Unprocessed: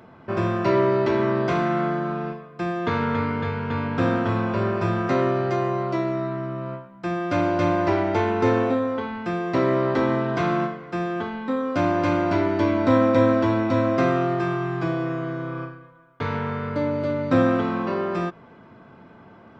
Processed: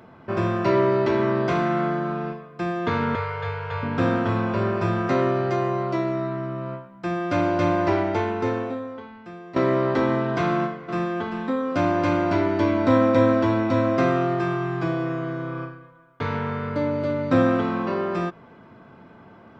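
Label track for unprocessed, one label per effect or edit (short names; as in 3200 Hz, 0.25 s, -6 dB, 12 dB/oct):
3.150000	3.830000	elliptic band-stop 130–470 Hz
7.970000	9.560000	fade out quadratic, to -14 dB
10.490000	11.110000	echo throw 0.39 s, feedback 25%, level -9 dB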